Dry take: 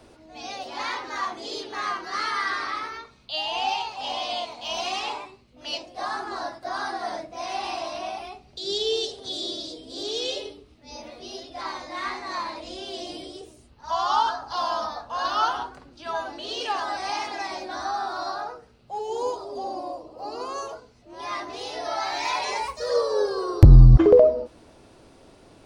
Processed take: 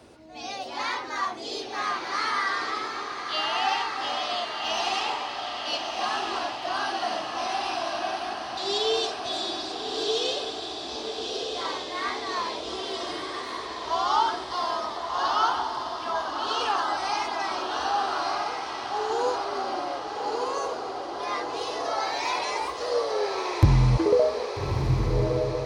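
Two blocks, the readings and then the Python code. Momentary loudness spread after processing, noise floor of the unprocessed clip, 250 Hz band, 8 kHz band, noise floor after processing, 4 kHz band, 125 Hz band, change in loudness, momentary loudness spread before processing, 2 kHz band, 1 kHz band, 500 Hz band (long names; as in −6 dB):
8 LU, −53 dBFS, −3.0 dB, can't be measured, −36 dBFS, +1.5 dB, −5.5 dB, −2.5 dB, 14 LU, +1.5 dB, +1.5 dB, −2.5 dB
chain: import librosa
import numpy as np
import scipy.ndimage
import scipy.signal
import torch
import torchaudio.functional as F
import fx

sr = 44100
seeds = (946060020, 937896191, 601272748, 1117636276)

y = fx.rider(x, sr, range_db=4, speed_s=2.0)
y = scipy.signal.sosfilt(scipy.signal.butter(2, 64.0, 'highpass', fs=sr, output='sos'), y)
y = fx.echo_diffused(y, sr, ms=1273, feedback_pct=60, wet_db=-4.0)
y = y * 10.0 ** (-3.5 / 20.0)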